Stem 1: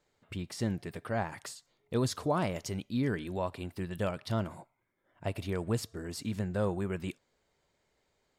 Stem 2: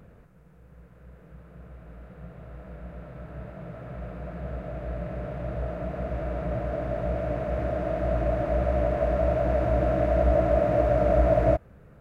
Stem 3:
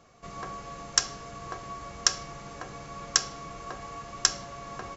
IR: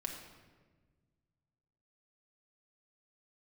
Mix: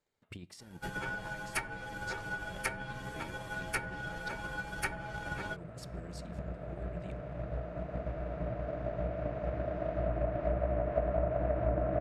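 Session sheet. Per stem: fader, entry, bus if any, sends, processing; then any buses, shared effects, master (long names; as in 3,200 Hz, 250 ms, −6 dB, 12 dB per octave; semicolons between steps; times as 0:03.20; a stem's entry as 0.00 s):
−15.5 dB, 0.00 s, send −14.5 dB, compressor whose output falls as the input rises −37 dBFS, ratio −1
−8.5 dB, 1.95 s, no send, no processing
+2.0 dB, 0.60 s, no send, partials spread apart or drawn together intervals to 118%; notch filter 4,000 Hz, Q 16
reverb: on, RT60 1.4 s, pre-delay 5 ms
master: treble cut that deepens with the level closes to 1,800 Hz, closed at −27.5 dBFS; transient designer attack +8 dB, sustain −1 dB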